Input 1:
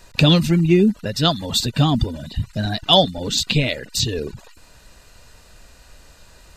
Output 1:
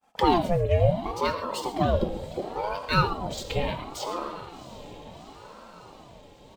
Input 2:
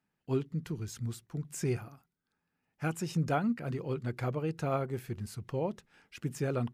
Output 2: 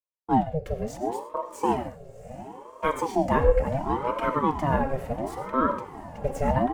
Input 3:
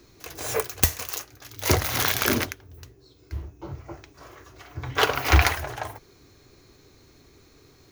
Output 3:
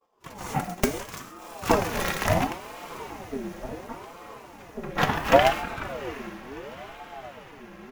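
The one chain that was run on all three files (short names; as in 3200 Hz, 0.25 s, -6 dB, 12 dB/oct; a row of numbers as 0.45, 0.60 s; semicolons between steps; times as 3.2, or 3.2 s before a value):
median filter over 3 samples; ten-band EQ 1000 Hz -5 dB, 4000 Hz -5 dB, 16000 Hz +4 dB; added harmonics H 7 -36 dB, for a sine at -2 dBFS; HPF 58 Hz 6 dB/oct; high shelf 2100 Hz -10.5 dB; comb 3.7 ms, depth 55%; non-linear reverb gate 0.16 s flat, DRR 7.5 dB; expander -46 dBFS; diffused feedback echo 0.719 s, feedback 66%, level -15 dB; ring modulator with a swept carrier 530 Hz, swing 50%, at 0.71 Hz; match loudness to -27 LUFS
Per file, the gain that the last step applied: -2.5, +13.5, +5.5 dB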